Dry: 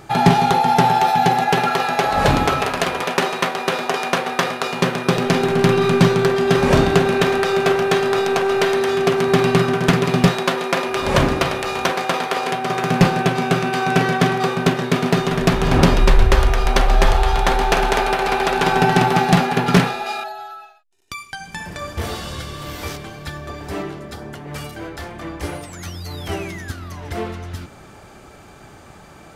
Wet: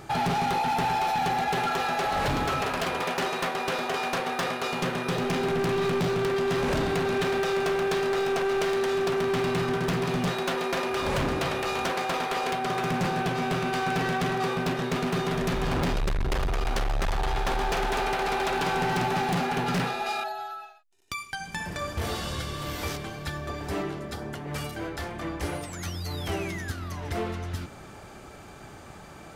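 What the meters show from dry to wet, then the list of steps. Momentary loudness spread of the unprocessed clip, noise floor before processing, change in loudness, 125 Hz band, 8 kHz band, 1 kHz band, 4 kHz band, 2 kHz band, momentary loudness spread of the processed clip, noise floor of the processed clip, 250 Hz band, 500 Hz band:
17 LU, -43 dBFS, -10.5 dB, -11.0 dB, -8.0 dB, -9.0 dB, -8.5 dB, -8.5 dB, 9 LU, -45 dBFS, -10.5 dB, -9.0 dB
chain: in parallel at +1 dB: compressor, threshold -24 dBFS, peak gain reduction 16 dB; on the sum: overloaded stage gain 14.5 dB; gain -9 dB

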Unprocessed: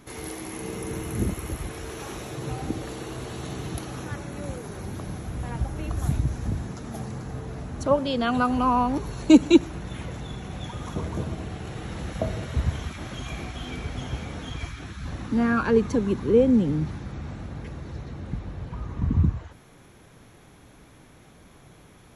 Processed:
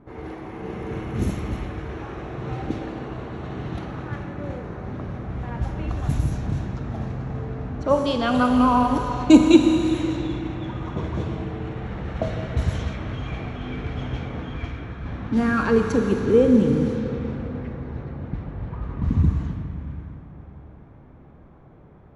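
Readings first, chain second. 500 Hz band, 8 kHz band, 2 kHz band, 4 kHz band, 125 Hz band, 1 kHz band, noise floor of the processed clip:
+3.0 dB, -3.0 dB, +2.5 dB, +1.5 dB, +3.0 dB, +3.0 dB, -47 dBFS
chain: Schroeder reverb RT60 3.7 s, combs from 28 ms, DRR 4 dB; low-pass opened by the level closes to 930 Hz, open at -18 dBFS; gain +1.5 dB

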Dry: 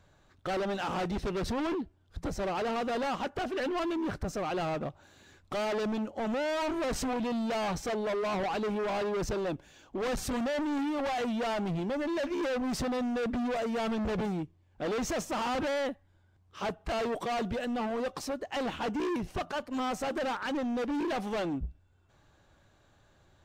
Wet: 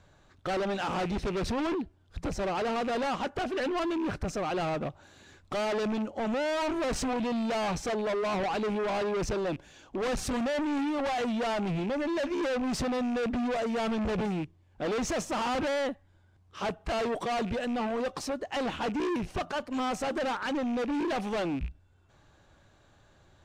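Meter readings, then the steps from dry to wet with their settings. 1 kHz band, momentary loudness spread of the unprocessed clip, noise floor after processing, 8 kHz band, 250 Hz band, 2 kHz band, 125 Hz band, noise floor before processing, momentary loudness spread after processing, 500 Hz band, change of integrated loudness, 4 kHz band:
+1.5 dB, 5 LU, -62 dBFS, +2.0 dB, +1.5 dB, +2.0 dB, +1.5 dB, -65 dBFS, 5 LU, +1.5 dB, +1.5 dB, +2.0 dB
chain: rattling part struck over -38 dBFS, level -38 dBFS; LPF 11000 Hz 12 dB/oct; in parallel at -8 dB: soft clip -36 dBFS, distortion -15 dB

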